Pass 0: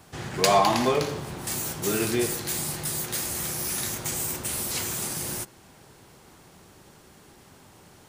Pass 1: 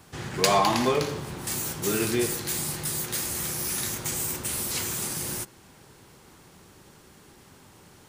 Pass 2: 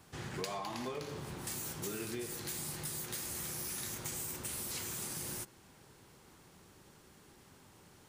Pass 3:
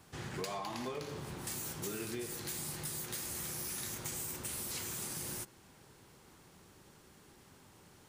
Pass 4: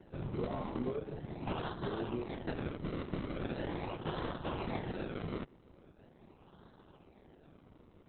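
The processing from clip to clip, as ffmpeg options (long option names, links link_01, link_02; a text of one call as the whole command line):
ffmpeg -i in.wav -af "equalizer=frequency=680:width=3.2:gain=-4" out.wav
ffmpeg -i in.wav -af "acompressor=threshold=-29dB:ratio=10,volume=-7.5dB" out.wav
ffmpeg -i in.wav -af "asoftclip=type=hard:threshold=-27.5dB" out.wav
ffmpeg -i in.wav -filter_complex "[0:a]acrossover=split=160|890[link_01][link_02][link_03];[link_03]acrusher=samples=36:mix=1:aa=0.000001:lfo=1:lforange=36:lforate=0.41[link_04];[link_01][link_02][link_04]amix=inputs=3:normalize=0,volume=5dB" -ar 48000 -c:a libopus -b:a 8k out.opus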